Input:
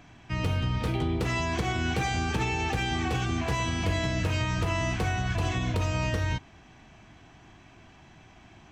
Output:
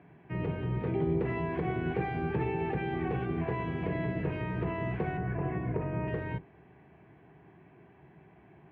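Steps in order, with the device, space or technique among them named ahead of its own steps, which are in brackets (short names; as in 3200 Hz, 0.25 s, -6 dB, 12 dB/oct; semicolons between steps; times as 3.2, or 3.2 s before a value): 5.17–6.08 LPF 2300 Hz 24 dB/oct; sub-octave bass pedal (octaver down 1 oct, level -1 dB; speaker cabinet 80–2100 Hz, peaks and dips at 92 Hz -10 dB, 160 Hz +7 dB, 230 Hz -4 dB, 400 Hz +10 dB, 1300 Hz -7 dB); gain -4.5 dB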